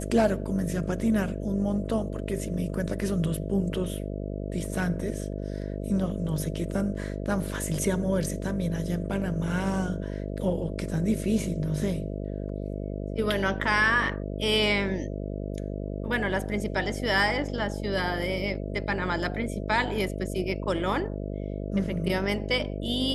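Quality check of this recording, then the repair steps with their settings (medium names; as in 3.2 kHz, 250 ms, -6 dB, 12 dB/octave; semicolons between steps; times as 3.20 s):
buzz 50 Hz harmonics 13 -33 dBFS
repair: de-hum 50 Hz, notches 13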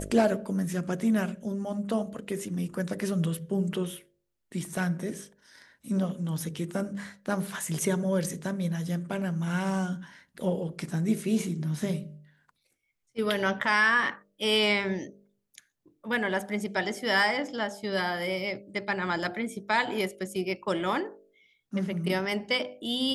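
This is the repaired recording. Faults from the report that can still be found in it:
nothing left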